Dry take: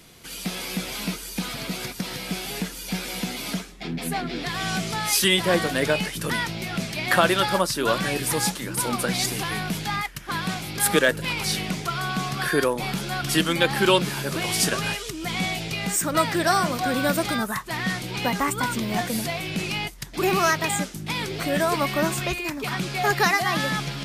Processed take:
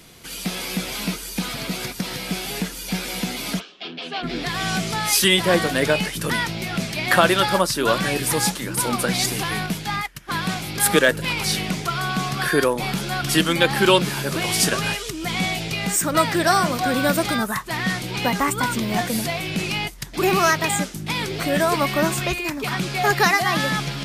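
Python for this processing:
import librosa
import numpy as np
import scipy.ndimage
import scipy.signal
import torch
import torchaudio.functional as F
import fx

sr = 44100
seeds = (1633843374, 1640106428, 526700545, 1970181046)

y = fx.cabinet(x, sr, low_hz=450.0, low_slope=12, high_hz=4900.0, hz=(840.0, 2000.0, 3000.0), db=(-6, -10, 9), at=(3.59, 4.22), fade=0.02)
y = fx.upward_expand(y, sr, threshold_db=-42.0, expansion=1.5, at=(9.66, 10.31))
y = y * 10.0 ** (3.0 / 20.0)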